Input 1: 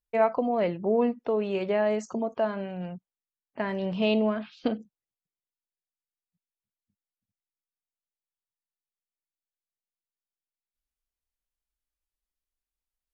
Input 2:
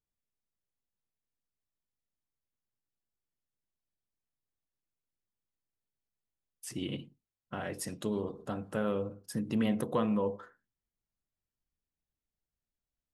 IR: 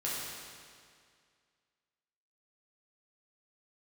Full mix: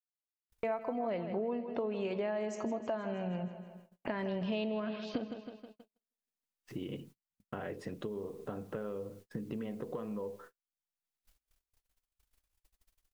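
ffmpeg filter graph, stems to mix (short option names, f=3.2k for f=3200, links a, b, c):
-filter_complex "[0:a]acompressor=mode=upward:threshold=-26dB:ratio=2.5,adelay=500,volume=-3.5dB,asplit=2[a][b];[b]volume=-13dB[c];[1:a]lowpass=2.6k,equalizer=f=430:w=3:g=7.5,acompressor=threshold=-36dB:ratio=16,volume=0.5dB,asplit=2[d][e];[e]apad=whole_len=601225[f];[a][f]sidechaincompress=threshold=-52dB:ratio=8:attack=28:release=622[g];[c]aecho=0:1:159|318|477|636|795|954|1113|1272|1431:1|0.59|0.348|0.205|0.121|0.0715|0.0422|0.0249|0.0147[h];[g][d][h]amix=inputs=3:normalize=0,agate=range=-38dB:threshold=-53dB:ratio=16:detection=peak,acompressor=threshold=-32dB:ratio=6"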